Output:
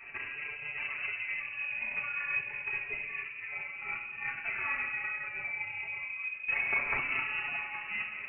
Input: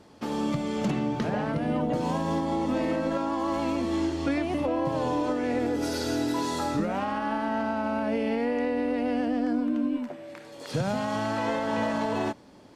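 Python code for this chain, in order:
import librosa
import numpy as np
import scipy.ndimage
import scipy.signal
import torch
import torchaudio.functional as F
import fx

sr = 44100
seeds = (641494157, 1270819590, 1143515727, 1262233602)

y = scipy.signal.sosfilt(scipy.signal.butter(2, 110.0, 'highpass', fs=sr, output='sos'), x)
y = fx.low_shelf(y, sr, hz=280.0, db=-3.5)
y = y + 0.94 * np.pad(y, (int(6.7 * sr / 1000.0), 0))[:len(y)]
y = fx.over_compress(y, sr, threshold_db=-33.0, ratio=-0.5)
y = fx.chorus_voices(y, sr, voices=6, hz=0.51, base_ms=27, depth_ms=1.5, mix_pct=50)
y = fx.stretch_grains(y, sr, factor=0.65, grain_ms=66.0)
y = fx.room_shoebox(y, sr, seeds[0], volume_m3=1900.0, walls='mixed', distance_m=1.8)
y = fx.freq_invert(y, sr, carrier_hz=2800)
y = fx.am_noise(y, sr, seeds[1], hz=5.7, depth_pct=60)
y = y * librosa.db_to_amplitude(4.0)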